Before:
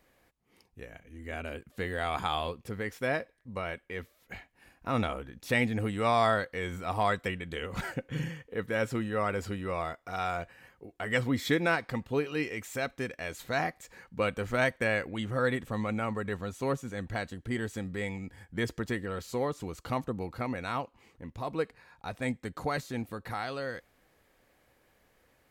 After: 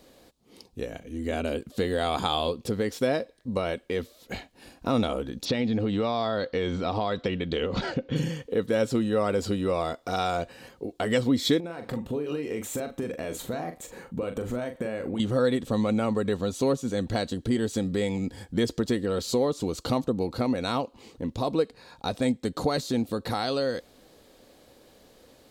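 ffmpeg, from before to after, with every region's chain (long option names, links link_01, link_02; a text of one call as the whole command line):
ffmpeg -i in.wav -filter_complex "[0:a]asettb=1/sr,asplit=3[link_01][link_02][link_03];[link_01]atrim=end=5.454[link_04];[link_02]atrim=start=5.45:end=8.16,asetpts=PTS-STARTPTS,afade=type=in:duration=0.004:curve=qsin,afade=type=out:start_time=2.706:duration=0.004:curve=qsin,lowpass=frequency=5100:width=0.5412,lowpass=frequency=5100:width=1.3066,acompressor=threshold=-30dB:ratio=4:attack=3.2:release=140:knee=1:detection=peak[link_05];[link_03]atrim=start=8.156[link_06];[link_04][link_05]acrossfade=duration=0.004:curve1=hsin:curve2=qsin[link_07];[link_07][link_06]acrossfade=duration=0.004:curve1=qsin:curve2=hsin,asettb=1/sr,asplit=3[link_08][link_09][link_10];[link_08]atrim=end=11.604[link_11];[link_09]atrim=start=11.6:end=15.2,asetpts=PTS-STARTPTS,afade=type=in:duration=0.004:curve=qsin,afade=type=out:start_time=3.596:duration=0.004:curve=qsin,equalizer=frequency=4700:width_type=o:width=1.1:gain=-13,acompressor=threshold=-39dB:ratio=8:attack=3.2:release=140:knee=1:detection=peak,asplit=2[link_12][link_13];[link_13]adelay=41,volume=-8dB[link_14];[link_12][link_14]amix=inputs=2:normalize=0,atrim=end_sample=158760[link_15];[link_10]atrim=start=15.196[link_16];[link_11][link_15]acrossfade=duration=0.004:curve1=hsin:curve2=qsin[link_17];[link_17][link_16]acrossfade=duration=0.004:curve1=qsin:curve2=hsin,equalizer=frequency=250:width_type=o:width=1:gain=7,equalizer=frequency=500:width_type=o:width=1:gain=6,equalizer=frequency=2000:width_type=o:width=1:gain=-7,equalizer=frequency=4000:width_type=o:width=1:gain=10,equalizer=frequency=8000:width_type=o:width=1:gain=4,acompressor=threshold=-34dB:ratio=2,volume=7.5dB" out.wav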